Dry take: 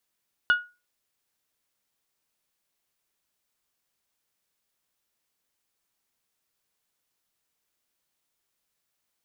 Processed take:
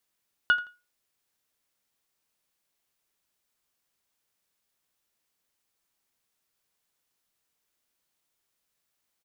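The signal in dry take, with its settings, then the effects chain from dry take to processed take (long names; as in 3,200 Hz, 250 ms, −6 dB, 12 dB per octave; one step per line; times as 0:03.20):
struck glass bell, lowest mode 1,450 Hz, decay 0.28 s, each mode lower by 11 dB, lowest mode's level −13.5 dB
repeating echo 84 ms, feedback 24%, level −17.5 dB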